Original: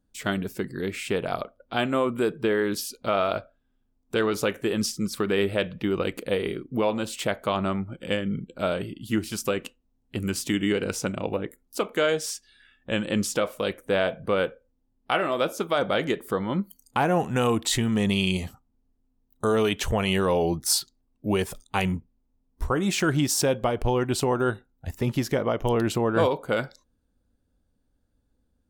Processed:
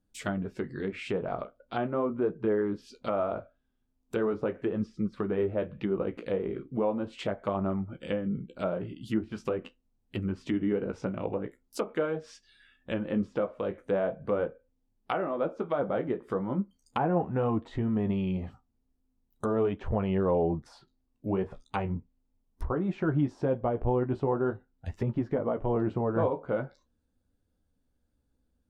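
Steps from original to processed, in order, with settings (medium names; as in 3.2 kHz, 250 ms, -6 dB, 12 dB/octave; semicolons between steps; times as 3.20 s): flange 0.4 Hz, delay 9.5 ms, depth 7.7 ms, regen -39%; low-pass that closes with the level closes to 1 kHz, closed at -27 dBFS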